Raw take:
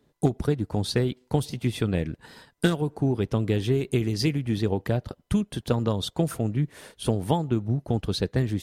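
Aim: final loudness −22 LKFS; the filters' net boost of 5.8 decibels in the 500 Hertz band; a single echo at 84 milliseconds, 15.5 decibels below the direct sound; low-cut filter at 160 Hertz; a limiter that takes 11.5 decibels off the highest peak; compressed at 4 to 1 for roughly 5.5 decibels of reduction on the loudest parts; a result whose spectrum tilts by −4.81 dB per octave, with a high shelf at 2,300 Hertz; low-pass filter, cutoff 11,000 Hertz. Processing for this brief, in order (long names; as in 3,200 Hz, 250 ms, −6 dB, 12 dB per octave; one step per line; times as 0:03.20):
high-pass filter 160 Hz
low-pass filter 11,000 Hz
parametric band 500 Hz +7 dB
high-shelf EQ 2,300 Hz +8 dB
downward compressor 4 to 1, threshold −21 dBFS
brickwall limiter −18.5 dBFS
single-tap delay 84 ms −15.5 dB
level +8.5 dB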